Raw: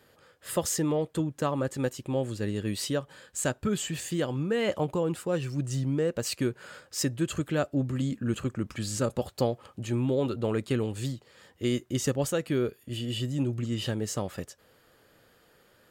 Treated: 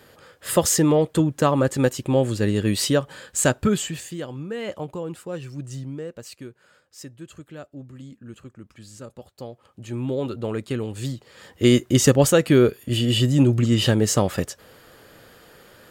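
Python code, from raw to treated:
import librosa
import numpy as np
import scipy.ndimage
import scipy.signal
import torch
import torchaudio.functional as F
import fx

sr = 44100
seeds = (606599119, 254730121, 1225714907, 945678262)

y = fx.gain(x, sr, db=fx.line((3.64, 9.5), (4.15, -3.0), (5.73, -3.0), (6.53, -11.5), (9.36, -11.5), (10.08, 1.0), (10.86, 1.0), (11.66, 12.0)))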